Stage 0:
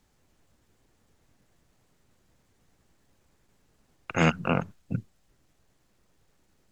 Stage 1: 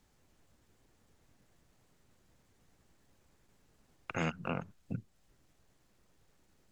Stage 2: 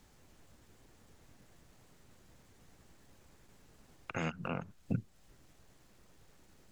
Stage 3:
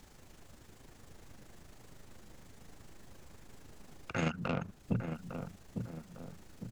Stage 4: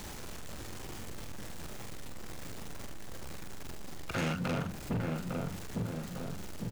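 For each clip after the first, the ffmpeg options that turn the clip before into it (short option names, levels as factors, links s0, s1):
-af "acompressor=threshold=0.0141:ratio=2,volume=0.794"
-af "alimiter=level_in=1.88:limit=0.0631:level=0:latency=1:release=331,volume=0.531,volume=2.24"
-filter_complex "[0:a]asoftclip=type=tanh:threshold=0.0299,tremolo=f=26:d=0.519,asplit=2[s0][s1];[s1]adelay=854,lowpass=f=940:p=1,volume=0.501,asplit=2[s2][s3];[s3]adelay=854,lowpass=f=940:p=1,volume=0.5,asplit=2[s4][s5];[s5]adelay=854,lowpass=f=940:p=1,volume=0.5,asplit=2[s6][s7];[s7]adelay=854,lowpass=f=940:p=1,volume=0.5,asplit=2[s8][s9];[s9]adelay=854,lowpass=f=940:p=1,volume=0.5,asplit=2[s10][s11];[s11]adelay=854,lowpass=f=940:p=1,volume=0.5[s12];[s2][s4][s6][s8][s10][s12]amix=inputs=6:normalize=0[s13];[s0][s13]amix=inputs=2:normalize=0,volume=2.51"
-filter_complex "[0:a]aeval=exprs='val(0)+0.5*0.00668*sgn(val(0))':c=same,asplit=2[s0][s1];[s1]adelay=45,volume=0.531[s2];[s0][s2]amix=inputs=2:normalize=0,asoftclip=type=hard:threshold=0.0237,volume=1.41"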